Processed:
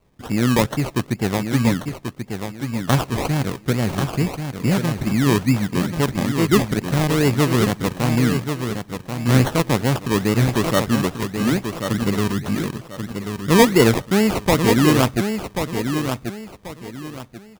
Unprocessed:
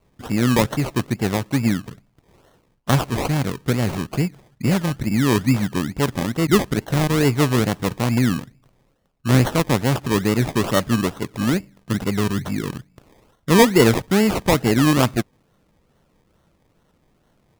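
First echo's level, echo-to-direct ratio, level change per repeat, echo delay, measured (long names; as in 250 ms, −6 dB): −7.0 dB, −6.5 dB, −11.0 dB, 1,086 ms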